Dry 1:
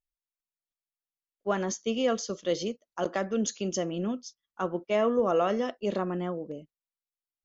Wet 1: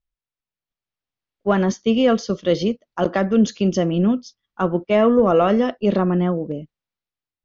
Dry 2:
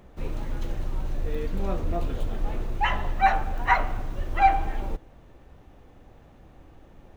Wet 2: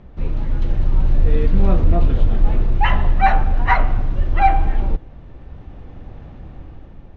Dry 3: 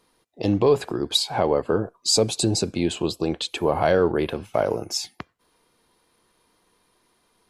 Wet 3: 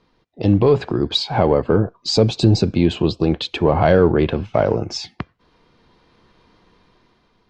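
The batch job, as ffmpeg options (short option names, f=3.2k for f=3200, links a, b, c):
-filter_complex "[0:a]asplit=2[a][b];[b]asoftclip=type=tanh:threshold=-19.5dB,volume=-10.5dB[c];[a][c]amix=inputs=2:normalize=0,lowpass=f=5.5k:w=0.5412,lowpass=f=5.5k:w=1.3066,bass=f=250:g=8,treble=f=4k:g=-4,dynaudnorm=f=330:g=5:m=7dB"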